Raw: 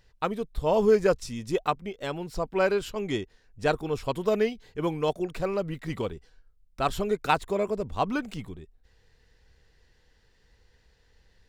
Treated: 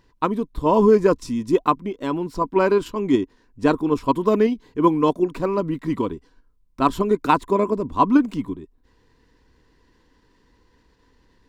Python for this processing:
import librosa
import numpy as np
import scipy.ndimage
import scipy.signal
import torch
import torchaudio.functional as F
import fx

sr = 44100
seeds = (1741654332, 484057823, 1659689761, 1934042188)

p1 = fx.level_steps(x, sr, step_db=13)
p2 = x + (p1 * 10.0 ** (-1.5 / 20.0))
p3 = fx.small_body(p2, sr, hz=(280.0, 1000.0), ring_ms=30, db=17)
y = p3 * 10.0 ** (-3.5 / 20.0)